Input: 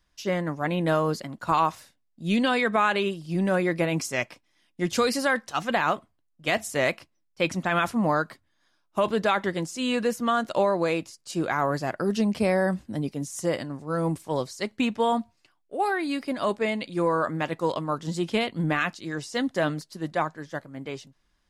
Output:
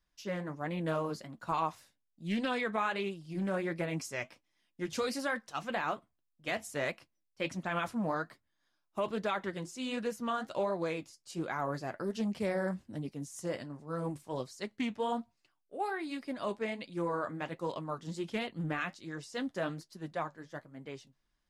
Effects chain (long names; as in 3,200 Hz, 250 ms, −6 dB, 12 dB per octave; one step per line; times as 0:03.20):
flanger 1.3 Hz, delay 4.4 ms, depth 6.4 ms, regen −57%
highs frequency-modulated by the lows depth 0.17 ms
level −6 dB